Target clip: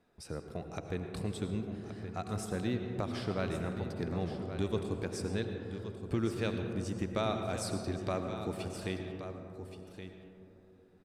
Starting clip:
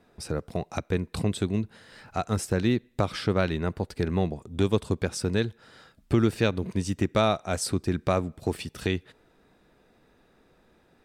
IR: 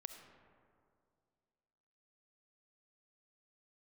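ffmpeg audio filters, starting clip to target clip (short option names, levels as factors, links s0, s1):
-filter_complex "[0:a]asettb=1/sr,asplit=3[s0][s1][s2];[s0]atrim=end=7.674[s3];[s1]atrim=start=7.67:end=8.09,asetpts=PTS-STARTPTS,afade=t=in:d=0.004:c=qsin,afade=t=out:st=0.416:d=0.004:c=qsin,equalizer=f=4400:w=2.3:g=8[s4];[s2]atrim=start=8.086[s5];[s3][s4]acrossfade=d=0.004:c1=hsin:c2=qsin[s6];[s6][s5]acrossfade=d=0.004:c1=qsin:c2=hsin,aecho=1:1:1123:0.299[s7];[1:a]atrim=start_sample=2205,asetrate=26460,aresample=44100[s8];[s7][s8]afir=irnorm=-1:irlink=0,volume=0.422"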